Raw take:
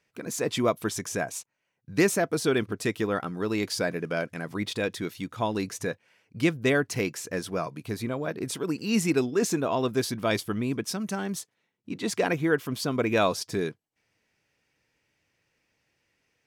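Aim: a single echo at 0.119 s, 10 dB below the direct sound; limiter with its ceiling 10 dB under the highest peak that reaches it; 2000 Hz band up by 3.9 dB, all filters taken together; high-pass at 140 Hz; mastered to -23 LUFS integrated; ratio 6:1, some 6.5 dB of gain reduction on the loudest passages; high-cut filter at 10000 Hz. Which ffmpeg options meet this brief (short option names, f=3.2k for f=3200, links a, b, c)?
-af "highpass=140,lowpass=10k,equalizer=f=2k:t=o:g=5,acompressor=threshold=-24dB:ratio=6,alimiter=limit=-23dB:level=0:latency=1,aecho=1:1:119:0.316,volume=11dB"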